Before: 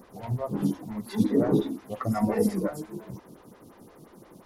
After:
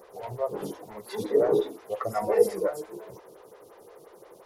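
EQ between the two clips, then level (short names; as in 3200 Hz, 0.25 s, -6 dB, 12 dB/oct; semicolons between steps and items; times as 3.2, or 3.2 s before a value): resonant low shelf 330 Hz -10 dB, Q 3; 0.0 dB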